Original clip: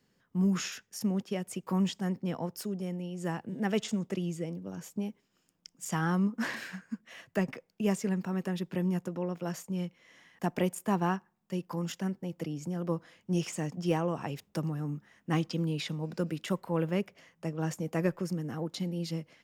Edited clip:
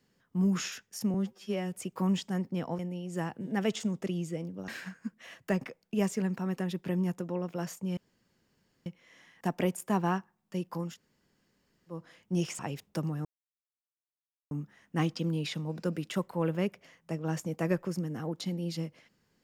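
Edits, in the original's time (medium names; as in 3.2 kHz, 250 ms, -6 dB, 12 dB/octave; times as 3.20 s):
1.14–1.43 s: stretch 2×
2.50–2.87 s: delete
4.76–6.55 s: delete
9.84 s: insert room tone 0.89 s
11.88–12.96 s: room tone, crossfade 0.24 s
13.57–14.19 s: delete
14.85 s: insert silence 1.26 s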